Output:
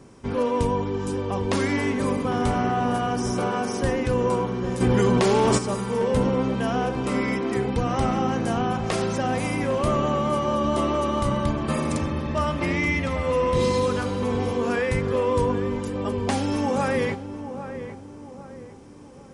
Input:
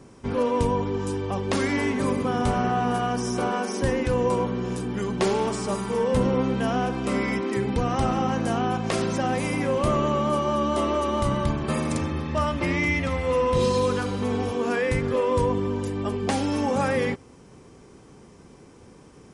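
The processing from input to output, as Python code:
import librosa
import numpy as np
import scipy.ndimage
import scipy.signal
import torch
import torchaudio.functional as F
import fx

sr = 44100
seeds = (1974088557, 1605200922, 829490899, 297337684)

p1 = x + fx.echo_filtered(x, sr, ms=803, feedback_pct=45, hz=1400.0, wet_db=-10, dry=0)
y = fx.env_flatten(p1, sr, amount_pct=100, at=(4.8, 5.57), fade=0.02)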